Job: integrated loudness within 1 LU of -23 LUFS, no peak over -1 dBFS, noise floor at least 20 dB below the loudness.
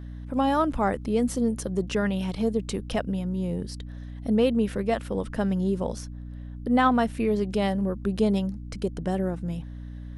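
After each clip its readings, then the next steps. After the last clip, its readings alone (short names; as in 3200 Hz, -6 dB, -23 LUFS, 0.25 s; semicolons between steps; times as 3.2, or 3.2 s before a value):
hum 60 Hz; harmonics up to 300 Hz; hum level -35 dBFS; loudness -26.5 LUFS; peak -9.5 dBFS; loudness target -23.0 LUFS
-> de-hum 60 Hz, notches 5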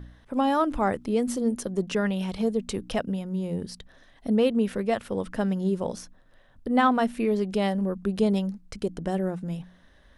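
hum none; loudness -27.0 LUFS; peak -9.5 dBFS; loudness target -23.0 LUFS
-> gain +4 dB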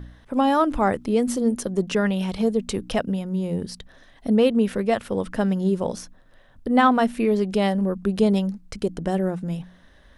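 loudness -23.0 LUFS; peak -5.5 dBFS; noise floor -52 dBFS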